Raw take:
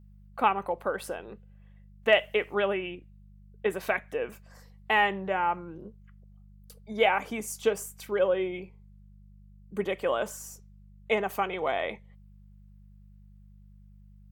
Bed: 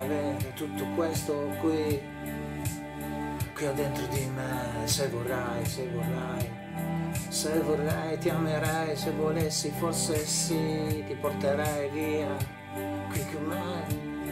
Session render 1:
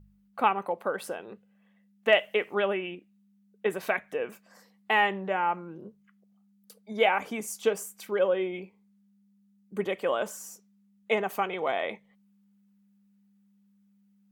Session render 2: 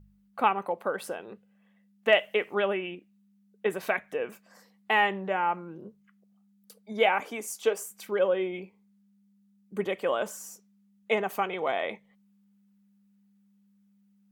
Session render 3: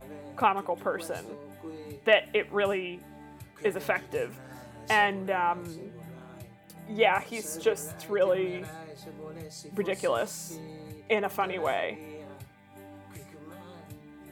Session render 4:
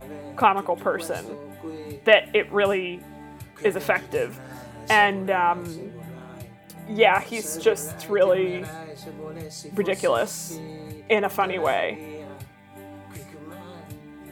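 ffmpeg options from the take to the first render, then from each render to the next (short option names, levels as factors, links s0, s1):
-af "bandreject=f=50:t=h:w=4,bandreject=f=100:t=h:w=4,bandreject=f=150:t=h:w=4"
-filter_complex "[0:a]asettb=1/sr,asplit=3[s0][s1][s2];[s0]atrim=end=7.204[s3];[s1]atrim=start=7.2:end=7.91,asetpts=PTS-STARTPTS,afade=t=in:d=0.004:c=qsin,afade=t=out:st=0.706:d=0.004:c=qsin,highpass=f=260:w=0.5412,highpass=f=260:w=1.3066[s4];[s2]atrim=start=7.906[s5];[s3][s4]acrossfade=d=0.004:c1=hsin:c2=qsin[s6];[s6][s5]acrossfade=d=0.004:c1=qsin:c2=hsin"
-filter_complex "[1:a]volume=0.188[s0];[0:a][s0]amix=inputs=2:normalize=0"
-af "volume=2"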